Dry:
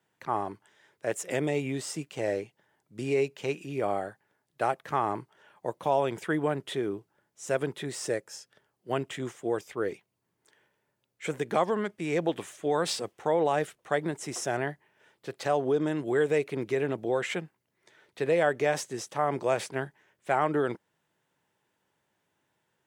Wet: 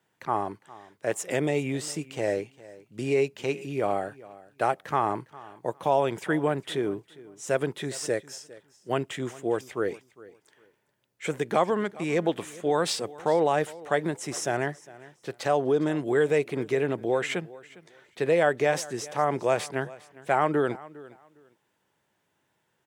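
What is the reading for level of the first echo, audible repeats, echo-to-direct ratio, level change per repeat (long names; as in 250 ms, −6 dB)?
−20.0 dB, 2, −20.0 dB, −13.5 dB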